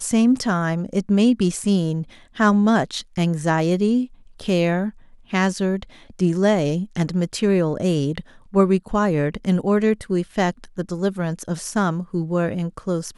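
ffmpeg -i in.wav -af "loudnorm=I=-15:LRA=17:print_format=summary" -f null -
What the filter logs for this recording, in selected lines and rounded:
Input Integrated:    -21.7 LUFS
Input True Peak:      -3.4 dBTP
Input LRA:             4.7 LU
Input Threshold:     -31.8 LUFS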